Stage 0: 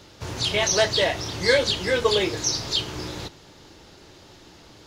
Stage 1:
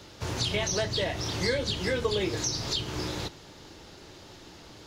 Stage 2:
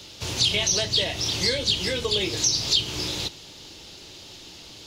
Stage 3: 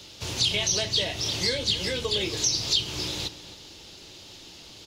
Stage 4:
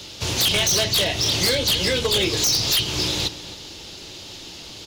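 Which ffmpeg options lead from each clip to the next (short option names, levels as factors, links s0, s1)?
-filter_complex "[0:a]acrossover=split=290[s0][s1];[s1]acompressor=threshold=0.0398:ratio=5[s2];[s0][s2]amix=inputs=2:normalize=0"
-af "highshelf=f=2200:t=q:w=1.5:g=8"
-filter_complex "[0:a]asplit=2[s0][s1];[s1]adelay=268.2,volume=0.2,highshelf=f=4000:g=-6.04[s2];[s0][s2]amix=inputs=2:normalize=0,volume=0.75"
-af "aeval=exprs='0.0841*(abs(mod(val(0)/0.0841+3,4)-2)-1)':c=same,volume=2.51"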